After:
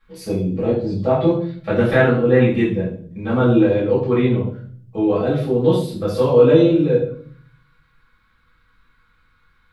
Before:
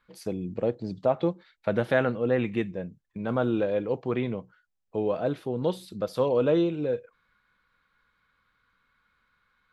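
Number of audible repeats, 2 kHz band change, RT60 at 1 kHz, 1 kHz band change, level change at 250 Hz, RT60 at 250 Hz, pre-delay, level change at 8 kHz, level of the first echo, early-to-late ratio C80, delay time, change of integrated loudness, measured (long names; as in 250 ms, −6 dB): no echo audible, +9.5 dB, 0.45 s, +8.0 dB, +11.5 dB, 0.90 s, 3 ms, can't be measured, no echo audible, 9.5 dB, no echo audible, +10.5 dB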